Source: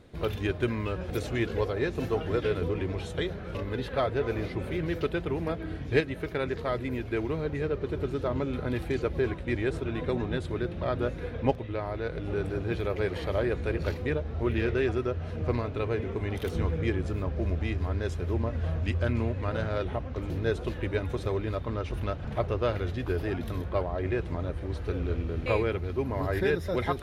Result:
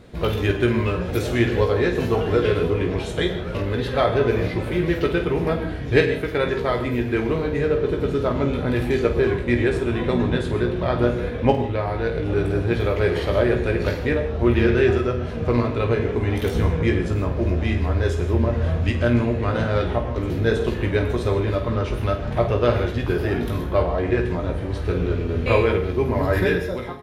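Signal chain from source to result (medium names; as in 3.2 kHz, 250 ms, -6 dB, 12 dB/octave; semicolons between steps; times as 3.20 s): fade out at the end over 0.65 s; early reflections 17 ms -6 dB, 50 ms -9.5 dB; gated-style reverb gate 180 ms flat, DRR 7.5 dB; trim +7 dB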